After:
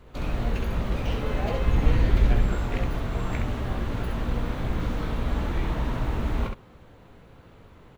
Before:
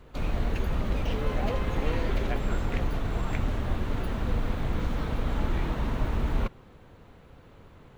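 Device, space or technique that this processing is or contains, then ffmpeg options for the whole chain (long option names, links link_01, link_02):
slapback doubling: -filter_complex "[0:a]asplit=3[link_01][link_02][link_03];[link_01]afade=type=out:start_time=1.64:duration=0.02[link_04];[link_02]asubboost=boost=3:cutoff=250,afade=type=in:start_time=1.64:duration=0.02,afade=type=out:start_time=2.45:duration=0.02[link_05];[link_03]afade=type=in:start_time=2.45:duration=0.02[link_06];[link_04][link_05][link_06]amix=inputs=3:normalize=0,asplit=3[link_07][link_08][link_09];[link_08]adelay=17,volume=-8dB[link_10];[link_09]adelay=66,volume=-5dB[link_11];[link_07][link_10][link_11]amix=inputs=3:normalize=0"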